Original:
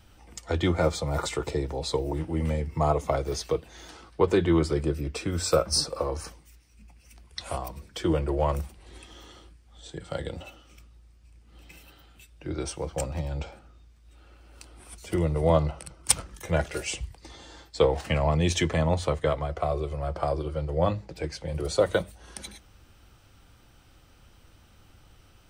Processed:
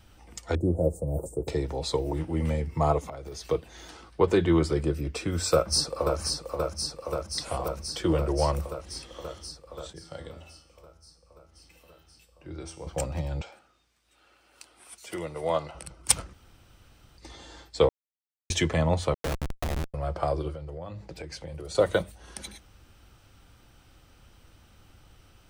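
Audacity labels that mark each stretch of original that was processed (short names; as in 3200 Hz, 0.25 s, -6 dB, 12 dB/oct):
0.550000	1.480000	elliptic band-stop 570–9400 Hz, stop band 70 dB
2.990000	3.490000	compressor 10:1, threshold -35 dBFS
5.530000	6.200000	echo throw 0.53 s, feedback 80%, level -5 dB
9.930000	12.870000	resonator 82 Hz, decay 0.78 s, mix 70%
13.410000	15.750000	HPF 800 Hz 6 dB/oct
16.330000	17.180000	room tone
17.890000	18.500000	mute
19.140000	19.940000	Schmitt trigger flips at -24 dBFS
20.510000	21.750000	compressor 16:1, threshold -34 dBFS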